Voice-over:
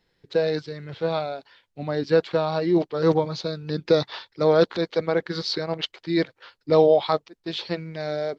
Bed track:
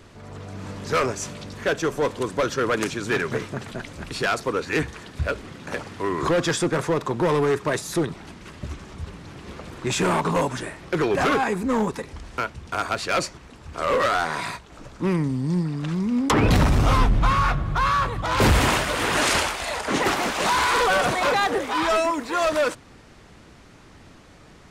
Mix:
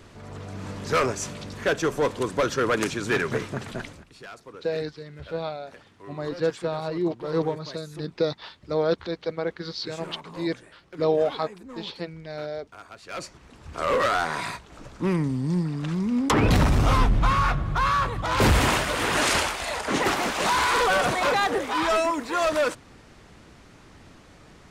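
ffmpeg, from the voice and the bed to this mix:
-filter_complex "[0:a]adelay=4300,volume=-5.5dB[a];[1:a]volume=17dB,afade=t=out:st=3.84:d=0.2:silence=0.11885,afade=t=in:st=13.02:d=0.73:silence=0.133352[b];[a][b]amix=inputs=2:normalize=0"

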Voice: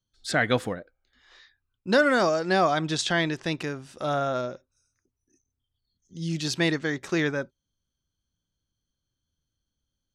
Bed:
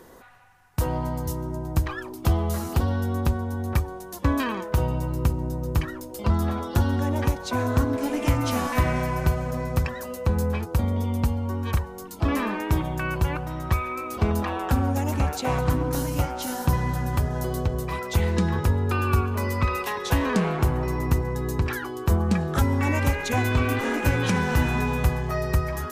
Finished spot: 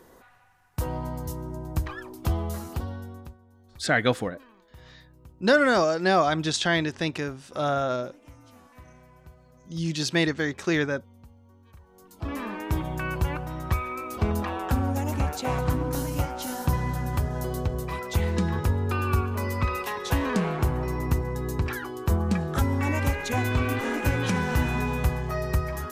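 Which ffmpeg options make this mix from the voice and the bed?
-filter_complex "[0:a]adelay=3550,volume=1dB[a];[1:a]volume=20.5dB,afade=t=out:st=2.4:d=0.97:silence=0.0707946,afade=t=in:st=11.77:d=1.18:silence=0.0562341[b];[a][b]amix=inputs=2:normalize=0"

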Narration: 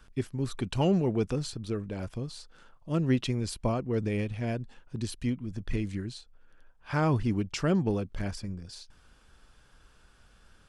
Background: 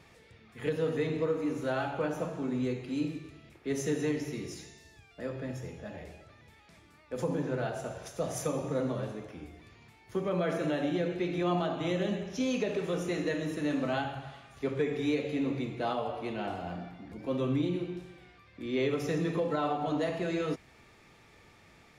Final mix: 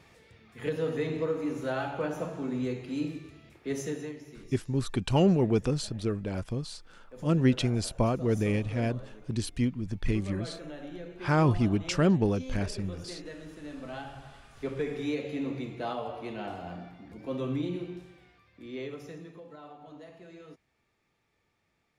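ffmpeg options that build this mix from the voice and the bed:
-filter_complex "[0:a]adelay=4350,volume=2.5dB[a];[1:a]volume=9.5dB,afade=t=out:st=3.71:d=0.44:silence=0.266073,afade=t=in:st=13.76:d=0.9:silence=0.334965,afade=t=out:st=17.93:d=1.4:silence=0.16788[b];[a][b]amix=inputs=2:normalize=0"

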